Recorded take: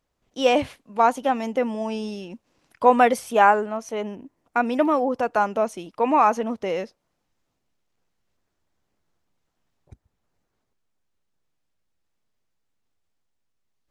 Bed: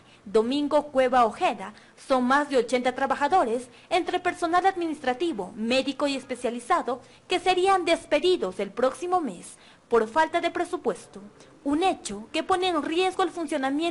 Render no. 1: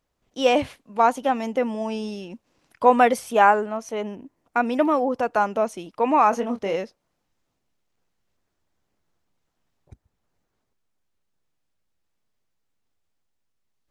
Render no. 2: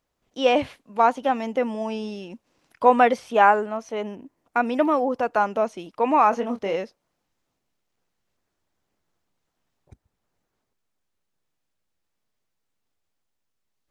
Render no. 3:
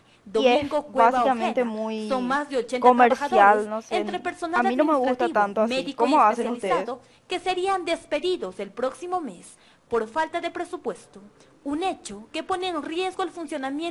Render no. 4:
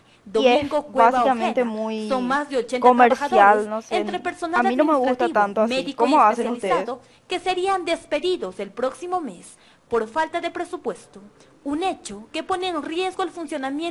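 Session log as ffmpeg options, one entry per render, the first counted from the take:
-filter_complex "[0:a]asettb=1/sr,asplit=3[a][b][c];[a]atrim=end=6.304[d];[b]atrim=start=6.3:end=6.76,asetpts=PTS-STARTPTS,afade=t=in:d=0.004:c=qsin,afade=t=out:st=0.456:d=0.004:c=qsin,asplit=2[e][f];[f]adelay=25,volume=-7dB[g];[e][g]amix=inputs=2:normalize=0,atrim=end_sample=20286[h];[c]atrim=start=6.756[i];[d][h]acrossfade=d=0.004:c1=hsin:c2=qsin[j];[j][i]acrossfade=d=0.004:c1=qsin:c2=hsin"
-filter_complex "[0:a]acrossover=split=5400[a][b];[b]acompressor=threshold=-58dB:ratio=4:attack=1:release=60[c];[a][c]amix=inputs=2:normalize=0,lowshelf=f=150:g=-4"
-filter_complex "[1:a]volume=-3dB[a];[0:a][a]amix=inputs=2:normalize=0"
-af "volume=2.5dB,alimiter=limit=-2dB:level=0:latency=1"

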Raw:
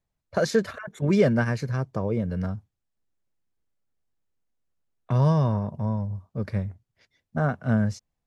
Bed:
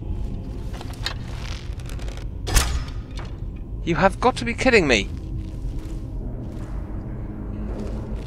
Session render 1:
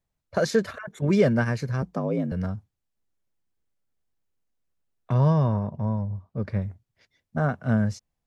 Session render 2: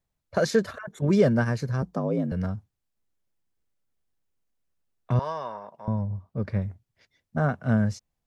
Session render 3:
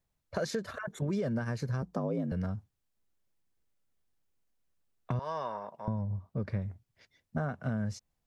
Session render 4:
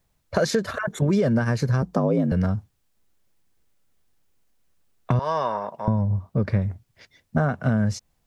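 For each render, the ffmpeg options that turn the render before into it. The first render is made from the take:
-filter_complex "[0:a]asettb=1/sr,asplit=3[a][b][c];[a]atrim=end=1.824[d];[b]atrim=start=1.82:end=2.32,asetpts=PTS-STARTPTS,afade=t=in:d=0.004:c=qsin,afade=t=out:st=0.496:d=0.004:c=qsin,afreqshift=52[e];[c]atrim=start=2.316[f];[d][e]acrossfade=d=0.004:c1=hsin:c2=qsin[g];[g][f]acrossfade=d=0.004:c1=qsin:c2=hsin,asettb=1/sr,asplit=3[h][i][j];[h]atrim=end=5.144[k];[i]atrim=start=5.14:end=6.62,asetpts=PTS-STARTPTS,afade=t=in:d=0.004:c=qsin,afade=t=out:st=1.476:d=0.004:c=qsin,aemphasis=mode=reproduction:type=50fm[l];[j]atrim=start=6.616[m];[k][l]acrossfade=d=0.004:c1=hsin:c2=qsin[n];[n][m]acrossfade=d=0.004:c1=qsin:c2=hsin"
-filter_complex "[0:a]asettb=1/sr,asplit=3[a][b][c];[a]atrim=end=0.594[d];[b]atrim=start=0.59:end=2.28,asetpts=PTS-STARTPTS,afade=t=in:d=0.004:c=qsin,afade=t=out:st=1.686:d=0.004:c=qsin,equalizer=f=2.3k:t=o:w=0.69:g=-5.5[e];[c]atrim=start=2.276[f];[d][e]acrossfade=d=0.004:c1=hsin:c2=qsin[g];[g][f]acrossfade=d=0.004:c1=qsin:c2=hsin,asettb=1/sr,asplit=3[h][i][j];[h]atrim=end=5.194[k];[i]atrim=start=5.19:end=5.88,asetpts=PTS-STARTPTS,afade=t=in:d=0.004:c=qsin,afade=t=out:st=0.686:d=0.004:c=qsin,highpass=750[l];[j]atrim=start=5.876[m];[k][l]acrossfade=d=0.004:c1=hsin:c2=qsin[n];[n][m]acrossfade=d=0.004:c1=qsin:c2=hsin"
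-af "alimiter=limit=-17dB:level=0:latency=1:release=189,acompressor=threshold=-31dB:ratio=3"
-af "volume=11.5dB"

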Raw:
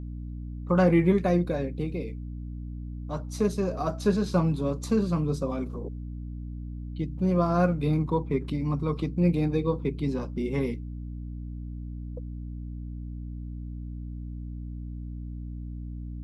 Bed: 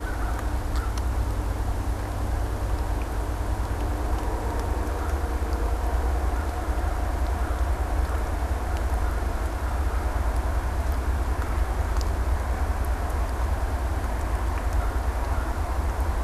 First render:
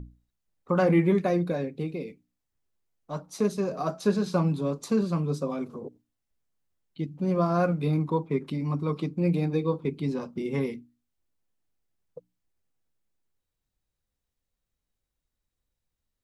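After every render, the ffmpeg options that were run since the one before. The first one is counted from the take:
-af "bandreject=f=60:t=h:w=6,bandreject=f=120:t=h:w=6,bandreject=f=180:t=h:w=6,bandreject=f=240:t=h:w=6,bandreject=f=300:t=h:w=6"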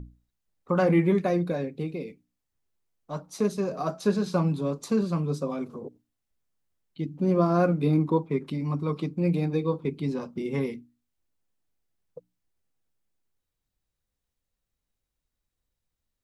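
-filter_complex "[0:a]asettb=1/sr,asplit=3[a][b][c];[a]atrim=end=7.054[d];[b]atrim=start=7.05:end=8.18,asetpts=PTS-STARTPTS,afade=t=in:d=0.004:c=qsin,afade=t=out:st=1.126:d=0.004:c=qsin,equalizer=f=310:w=1.3:g=6[e];[c]atrim=start=8.176[f];[d][e]acrossfade=d=0.004:c1=hsin:c2=qsin[g];[g][f]acrossfade=d=0.004:c1=qsin:c2=hsin"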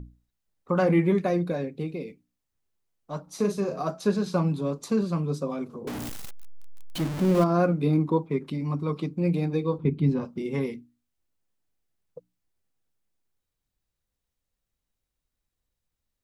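-filter_complex "[0:a]asettb=1/sr,asplit=3[a][b][c];[a]atrim=end=3.234[d];[b]atrim=start=3.23:end=3.81,asetpts=PTS-STARTPTS,afade=t=in:d=0.004:c=qsin,afade=t=out:st=0.576:d=0.004:c=qsin,asplit=2[e][f];[f]adelay=40,volume=-7.5dB[g];[e][g]amix=inputs=2:normalize=0,atrim=end_sample=25578[h];[c]atrim=start=3.806[i];[d][h]acrossfade=d=0.004:c1=hsin:c2=qsin[j];[j][i]acrossfade=d=0.004:c1=qsin:c2=hsin,asettb=1/sr,asplit=3[k][l][m];[k]atrim=end=5.874[n];[l]atrim=start=5.87:end=7.44,asetpts=PTS-STARTPTS,afade=t=in:d=0.004:c=qsin,afade=t=out:st=1.566:d=0.004:c=qsin,aeval=exprs='val(0)+0.5*0.0422*sgn(val(0))':c=same[o];[m]atrim=start=7.436[p];[n][o]acrossfade=d=0.004:c1=hsin:c2=qsin[q];[q][p]acrossfade=d=0.004:c1=qsin:c2=hsin,asettb=1/sr,asplit=3[r][s][t];[r]atrim=end=9.784[u];[s]atrim=start=9.78:end=10.25,asetpts=PTS-STARTPTS,afade=t=in:d=0.004:c=qsin,afade=t=out:st=0.466:d=0.004:c=qsin,bass=f=250:g=10,treble=f=4k:g=-9[v];[t]atrim=start=10.246[w];[u][v]acrossfade=d=0.004:c1=hsin:c2=qsin[x];[x][w]acrossfade=d=0.004:c1=qsin:c2=hsin"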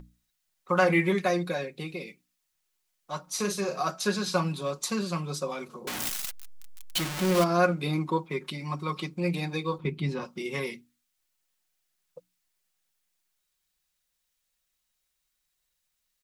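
-af "tiltshelf=f=790:g=-9,aecho=1:1:5.5:0.47"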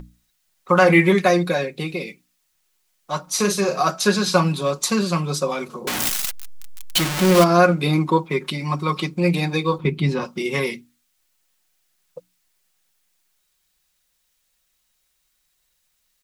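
-af "volume=9.5dB,alimiter=limit=-2dB:level=0:latency=1"

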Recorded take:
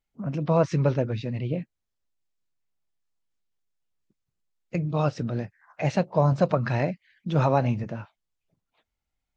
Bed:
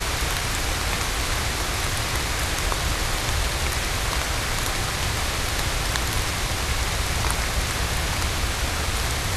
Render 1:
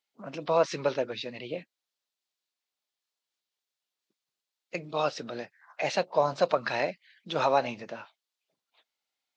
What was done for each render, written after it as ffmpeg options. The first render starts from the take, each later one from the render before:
-af "highpass=440,equalizer=f=4k:w=1.2:g=8"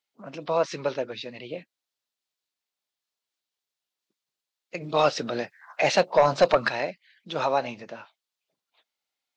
-filter_complex "[0:a]asplit=3[a][b][c];[a]afade=t=out:st=4.8:d=0.02[d];[b]aeval=exprs='0.316*sin(PI/2*1.58*val(0)/0.316)':c=same,afade=t=in:st=4.8:d=0.02,afade=t=out:st=6.68:d=0.02[e];[c]afade=t=in:st=6.68:d=0.02[f];[d][e][f]amix=inputs=3:normalize=0"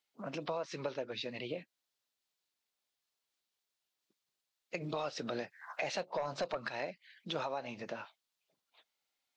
-af "alimiter=limit=-17.5dB:level=0:latency=1:release=326,acompressor=threshold=-37dB:ratio=3"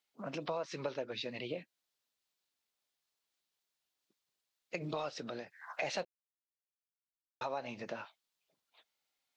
-filter_complex "[0:a]asplit=4[a][b][c][d];[a]atrim=end=5.46,asetpts=PTS-STARTPTS,afade=t=out:st=4.89:d=0.57:silence=0.473151[e];[b]atrim=start=5.46:end=6.05,asetpts=PTS-STARTPTS,afade=t=in:d=0.004:c=hsin:silence=0.473151,afade=t=out:st=0.586:d=0.004:c=hsin[f];[c]atrim=start=6.05:end=7.41,asetpts=PTS-STARTPTS,volume=0[g];[d]atrim=start=7.41,asetpts=PTS-STARTPTS,afade=t=in:d=0.004:c=hsin[h];[e][f][g][h]concat=n=4:v=0:a=1"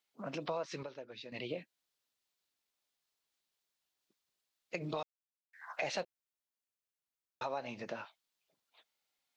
-filter_complex "[0:a]asplit=5[a][b][c][d][e];[a]atrim=end=0.832[f];[b]atrim=start=0.828:end=1.322,asetpts=PTS-STARTPTS,volume=-8.5dB[g];[c]atrim=start=1.318:end=5.03,asetpts=PTS-STARTPTS,afade=t=out:st=3.708:d=0.004:c=hsin[h];[d]atrim=start=5.03:end=5.53,asetpts=PTS-STARTPTS,volume=0[i];[e]atrim=start=5.53,asetpts=PTS-STARTPTS,afade=t=in:d=0.004:c=hsin[j];[f][g]acrossfade=d=0.004:c1=hsin:c2=hsin[k];[h][i][j]concat=n=3:v=0:a=1[l];[k][l]acrossfade=d=0.004:c1=hsin:c2=hsin"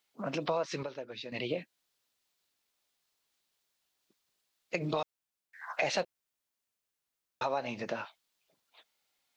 -af "volume=6dB"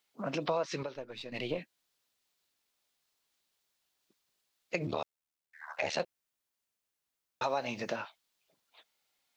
-filter_complex "[0:a]asettb=1/sr,asplit=3[a][b][c];[a]atrim=end=0.954[d];[b]atrim=start=0.95:end=1.58,asetpts=PTS-STARTPTS,afade=t=in:d=0.004:c=qsin,afade=t=out:st=0.626:d=0.004:c=qsin,aeval=exprs='if(lt(val(0),0),0.708*val(0),val(0))':c=same[e];[c]atrim=start=1.576[f];[d][e]acrossfade=d=0.004:c1=hsin:c2=qsin[g];[g][f]acrossfade=d=0.004:c1=qsin:c2=hsin,asettb=1/sr,asplit=3[h][i][j];[h]atrim=end=4.864[k];[i]atrim=start=4.86:end=6,asetpts=PTS-STARTPTS,afade=t=in:d=0.004:c=qsin,afade=t=out:st=1.136:d=0.004:c=qsin,aeval=exprs='val(0)*sin(2*PI*38*n/s)':c=same[l];[j]atrim=start=5.996[m];[k][l]acrossfade=d=0.004:c1=hsin:c2=qsin[n];[n][m]acrossfade=d=0.004:c1=qsin:c2=hsin,asettb=1/sr,asplit=3[o][p][q];[o]atrim=end=7.434[r];[p]atrim=start=7.43:end=7.96,asetpts=PTS-STARTPTS,afade=t=in:d=0.004:c=qsin,afade=t=out:st=0.526:d=0.004:c=qsin,highshelf=f=4.8k:g=8.5[s];[q]atrim=start=7.956[t];[r][s]acrossfade=d=0.004:c1=hsin:c2=qsin[u];[u][t]acrossfade=d=0.004:c1=qsin:c2=hsin"

